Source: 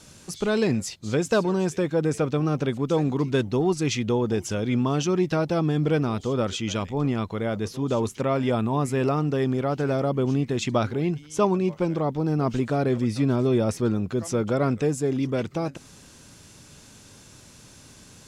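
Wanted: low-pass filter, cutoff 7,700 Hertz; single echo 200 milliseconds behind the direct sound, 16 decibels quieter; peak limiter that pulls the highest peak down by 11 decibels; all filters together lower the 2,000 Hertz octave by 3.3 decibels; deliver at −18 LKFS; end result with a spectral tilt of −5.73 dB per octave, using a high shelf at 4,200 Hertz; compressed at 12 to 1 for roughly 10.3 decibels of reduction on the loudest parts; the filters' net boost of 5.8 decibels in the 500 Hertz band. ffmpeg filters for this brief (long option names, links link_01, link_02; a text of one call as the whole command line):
ffmpeg -i in.wav -af "lowpass=7700,equalizer=frequency=500:width_type=o:gain=7.5,equalizer=frequency=2000:width_type=o:gain=-7,highshelf=frequency=4200:gain=7,acompressor=threshold=-23dB:ratio=12,alimiter=level_in=0.5dB:limit=-24dB:level=0:latency=1,volume=-0.5dB,aecho=1:1:200:0.158,volume=14.5dB" out.wav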